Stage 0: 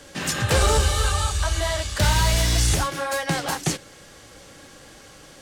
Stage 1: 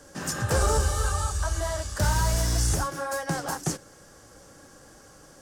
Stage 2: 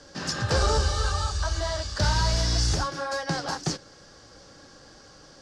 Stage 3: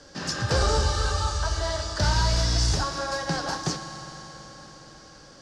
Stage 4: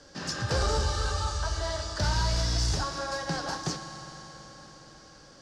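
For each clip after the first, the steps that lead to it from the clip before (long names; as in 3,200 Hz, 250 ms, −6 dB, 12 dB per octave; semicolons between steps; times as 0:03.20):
flat-topped bell 2,900 Hz −10 dB 1.3 octaves; level −4 dB
low-pass with resonance 4,600 Hz, resonance Q 2.8
convolution reverb RT60 4.6 s, pre-delay 9 ms, DRR 7 dB
soft clipping −12 dBFS, distortion −26 dB; level −3.5 dB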